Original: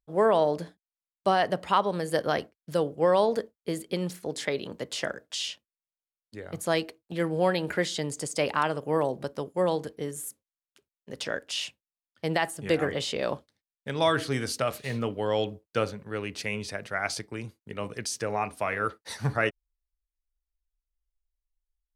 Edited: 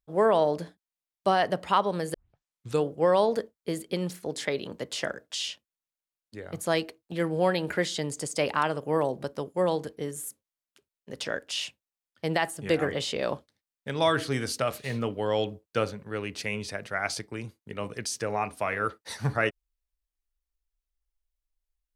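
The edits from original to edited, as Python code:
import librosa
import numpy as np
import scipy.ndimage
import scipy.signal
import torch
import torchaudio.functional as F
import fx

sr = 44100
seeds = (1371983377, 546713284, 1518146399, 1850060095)

y = fx.edit(x, sr, fx.tape_start(start_s=2.14, length_s=0.71), tone=tone)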